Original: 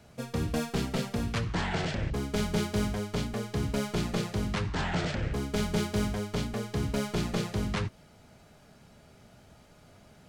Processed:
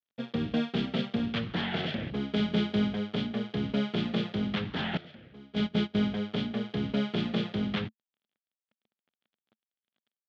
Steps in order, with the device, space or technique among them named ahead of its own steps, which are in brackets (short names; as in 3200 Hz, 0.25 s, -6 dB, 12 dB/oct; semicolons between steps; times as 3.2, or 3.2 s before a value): blown loudspeaker (crossover distortion -47 dBFS; speaker cabinet 140–3900 Hz, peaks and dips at 220 Hz +8 dB, 990 Hz -7 dB, 3300 Hz +9 dB); 4.97–5.95 gate -27 dBFS, range -17 dB